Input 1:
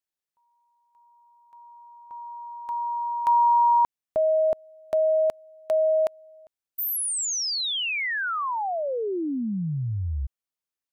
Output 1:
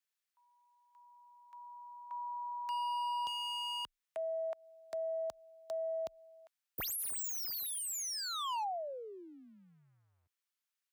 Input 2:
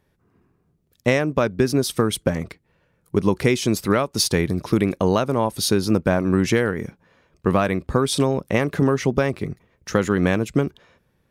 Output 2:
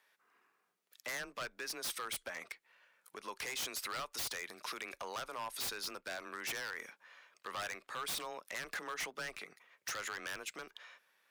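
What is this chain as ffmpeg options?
-af "acompressor=threshold=-30dB:ratio=2.5:attack=0.26:release=147:knee=6:detection=rms,highpass=1.4k,highshelf=f=2.9k:g=-5.5,aeval=exprs='0.0119*(abs(mod(val(0)/0.0119+3,4)-2)-1)':c=same,afreqshift=19,volume=5.5dB"

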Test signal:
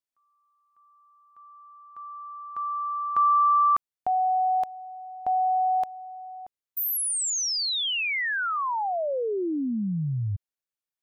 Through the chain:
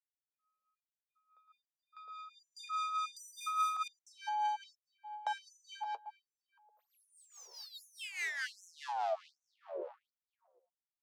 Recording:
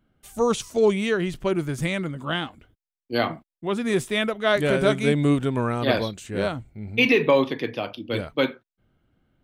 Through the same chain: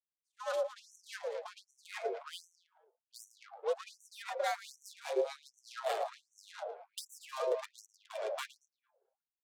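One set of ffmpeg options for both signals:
-filter_complex "[0:a]aeval=exprs='if(lt(val(0),0),0.251*val(0),val(0))':c=same,highpass=f=110:w=0.5412,highpass=f=110:w=1.3066,asplit=2[a][b];[b]adelay=111,lowpass=f=4.1k:p=1,volume=-4dB,asplit=2[c][d];[d]adelay=111,lowpass=f=4.1k:p=1,volume=0.34,asplit=2[e][f];[f]adelay=111,lowpass=f=4.1k:p=1,volume=0.34,asplit=2[g][h];[h]adelay=111,lowpass=f=4.1k:p=1,volume=0.34[i];[a][c][e][g][i]amix=inputs=5:normalize=0,adynamicequalizer=threshold=0.00398:dfrequency=2900:dqfactor=3.2:tfrequency=2900:tqfactor=3.2:attack=5:release=100:ratio=0.375:range=2.5:mode=cutabove:tftype=bell,adynamicsmooth=sensitivity=3.5:basefreq=650,flanger=delay=1.6:depth=7.6:regen=44:speed=0.26:shape=triangular,equalizer=f=1.7k:w=0.63:g=-11,acrossover=split=290|2900[j][k][l];[j]acompressor=threshold=-41dB:ratio=4[m];[k]acompressor=threshold=-42dB:ratio=4[n];[l]acompressor=threshold=-60dB:ratio=4[o];[m][n][o]amix=inputs=3:normalize=0,afreqshift=100,acrossover=split=800[p][q];[p]aeval=exprs='val(0)*(1-0.7/2+0.7/2*cos(2*PI*4.8*n/s))':c=same[r];[q]aeval=exprs='val(0)*(1-0.7/2-0.7/2*cos(2*PI*4.8*n/s))':c=same[s];[r][s]amix=inputs=2:normalize=0,afftfilt=real='re*gte(b*sr/1024,380*pow(5800/380,0.5+0.5*sin(2*PI*1.3*pts/sr)))':imag='im*gte(b*sr/1024,380*pow(5800/380,0.5+0.5*sin(2*PI*1.3*pts/sr)))':win_size=1024:overlap=0.75,volume=12.5dB"

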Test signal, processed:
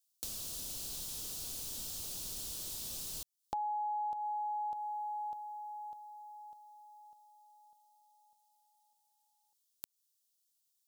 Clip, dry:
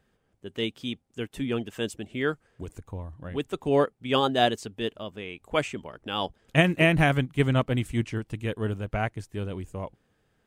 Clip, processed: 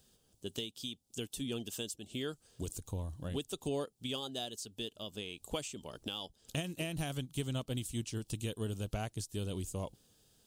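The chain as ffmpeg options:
-af "aexciter=amount=6.2:drive=9.4:freq=3.1k,acompressor=threshold=-31dB:ratio=6,tiltshelf=f=1.1k:g=4.5,volume=-5.5dB"

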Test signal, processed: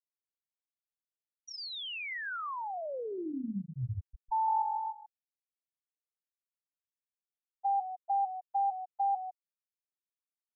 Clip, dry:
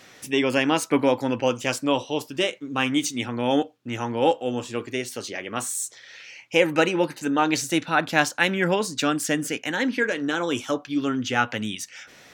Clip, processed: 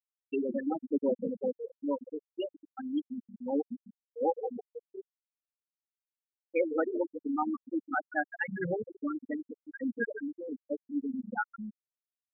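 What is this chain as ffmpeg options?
-filter_complex "[0:a]asplit=7[a][b][c][d][e][f][g];[b]adelay=154,afreqshift=-46,volume=-7dB[h];[c]adelay=308,afreqshift=-92,volume=-12.5dB[i];[d]adelay=462,afreqshift=-138,volume=-18dB[j];[e]adelay=616,afreqshift=-184,volume=-23.5dB[k];[f]adelay=770,afreqshift=-230,volume=-29.1dB[l];[g]adelay=924,afreqshift=-276,volume=-34.6dB[m];[a][h][i][j][k][l][m]amix=inputs=7:normalize=0,afftfilt=real='re*gte(hypot(re,im),0.447)':imag='im*gte(hypot(re,im),0.447)':win_size=1024:overlap=0.75,volume=-8dB"

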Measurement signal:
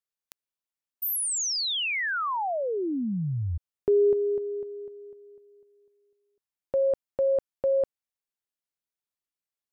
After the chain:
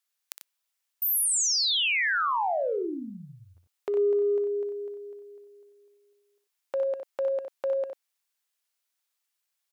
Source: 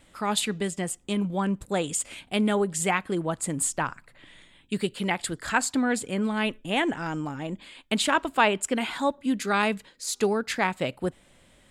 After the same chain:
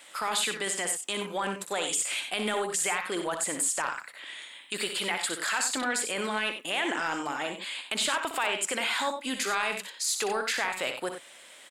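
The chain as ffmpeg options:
-af "highpass=480,tiltshelf=f=910:g=-4.5,acompressor=threshold=-33dB:ratio=4:attack=0.92:release=33:knee=1:detection=peak,aecho=1:1:61|93:0.376|0.335,volume=6.5dB"

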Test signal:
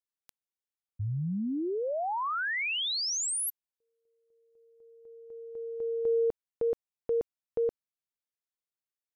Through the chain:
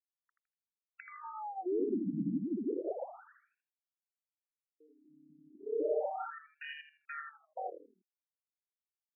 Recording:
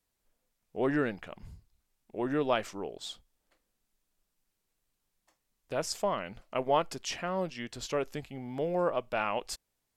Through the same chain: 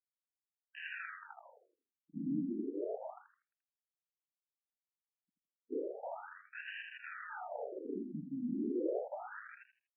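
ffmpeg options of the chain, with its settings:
-filter_complex "[0:a]lowpass=f=3k:t=q:w=6.1,lowshelf=f=420:g=4,acompressor=threshold=-34dB:ratio=5:attack=11:release=62:knee=1:detection=rms,aeval=exprs='sgn(val(0))*max(abs(val(0))-0.00178,0)':c=same,equalizer=f=760:w=0.7:g=5,acrusher=samples=41:mix=1:aa=0.000001,aeval=exprs='(mod(28.2*val(0)+1,2)-1)/28.2':c=same,asplit=5[a][b][c][d][e];[b]adelay=80,afreqshift=-33,volume=-4dB[f];[c]adelay=160,afreqshift=-66,volume=-14.5dB[g];[d]adelay=240,afreqshift=-99,volume=-24.9dB[h];[e]adelay=320,afreqshift=-132,volume=-35.4dB[i];[a][f][g][h][i]amix=inputs=5:normalize=0,afftfilt=real='re*between(b*sr/1024,220*pow(2200/220,0.5+0.5*sin(2*PI*0.33*pts/sr))/1.41,220*pow(2200/220,0.5+0.5*sin(2*PI*0.33*pts/sr))*1.41)':imag='im*between(b*sr/1024,220*pow(2200/220,0.5+0.5*sin(2*PI*0.33*pts/sr))/1.41,220*pow(2200/220,0.5+0.5*sin(2*PI*0.33*pts/sr))*1.41)':win_size=1024:overlap=0.75,volume=2dB"

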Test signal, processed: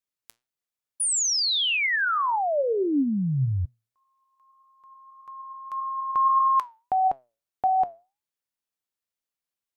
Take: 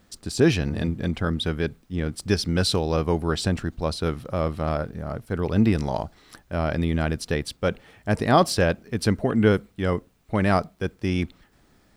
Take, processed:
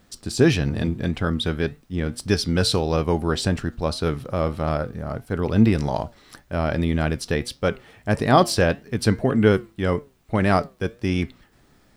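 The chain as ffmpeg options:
-af "flanger=delay=6.6:depth=2.5:regen=83:speed=1.7:shape=triangular,volume=6.5dB"

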